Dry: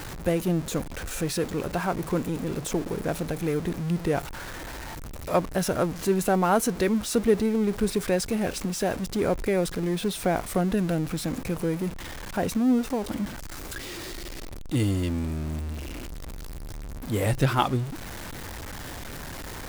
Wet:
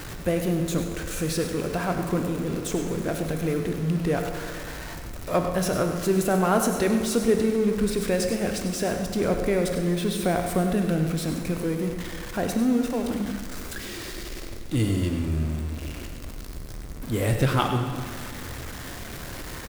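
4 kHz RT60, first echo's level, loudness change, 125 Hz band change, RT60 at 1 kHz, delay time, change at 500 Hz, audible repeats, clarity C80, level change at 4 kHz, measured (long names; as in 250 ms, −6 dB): 1.9 s, −11.0 dB, +1.5 dB, +2.0 dB, 2.1 s, 100 ms, +1.5 dB, 1, 5.5 dB, +1.5 dB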